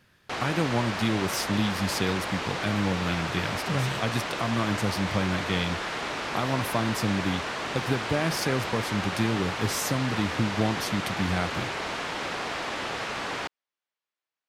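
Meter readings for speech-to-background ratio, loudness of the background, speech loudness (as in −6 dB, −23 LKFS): 1.5 dB, −31.0 LKFS, −29.5 LKFS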